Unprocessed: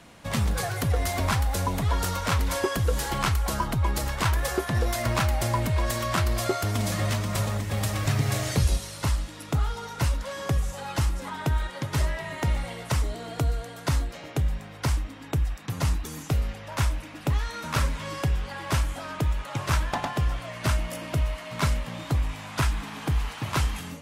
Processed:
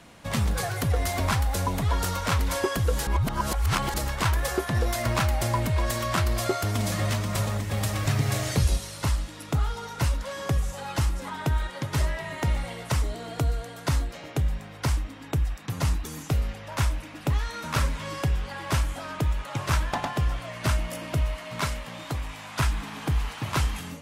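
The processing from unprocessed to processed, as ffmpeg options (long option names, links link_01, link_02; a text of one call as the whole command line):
ffmpeg -i in.wav -filter_complex "[0:a]asettb=1/sr,asplit=3[link_01][link_02][link_03];[link_01]atrim=end=21.614[link_04];[link_02]atrim=start=21.61:end=22.6,asetpts=PTS-STARTPTS,afade=type=in:duration=0.004:curve=qsin,afade=type=out:start_time=0.986:duration=0.004:curve=qsin,lowshelf=frequency=300:gain=-7.5[link_05];[link_03]atrim=start=22.596[link_06];[link_04][link_05]acrossfade=duration=0.004:curve1=hsin:curve2=qsin[link_07];[link_07][link_06]acrossfade=duration=0.004:curve1=qsin:curve2=hsin,asplit=3[link_08][link_09][link_10];[link_08]atrim=end=3.072[link_11];[link_09]atrim=start=3.068:end=3.942,asetpts=PTS-STARTPTS,areverse[link_12];[link_10]atrim=start=3.938[link_13];[link_11][link_12]acrossfade=duration=0.004:curve1=hsin:curve2=hsin[link_14];[link_14][link_13]acrossfade=duration=0.004:curve1=hsin:curve2=hsin" out.wav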